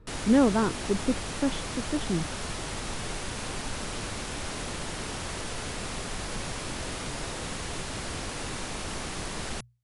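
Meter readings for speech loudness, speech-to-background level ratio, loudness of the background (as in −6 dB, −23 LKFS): −28.0 LKFS, 6.5 dB, −34.5 LKFS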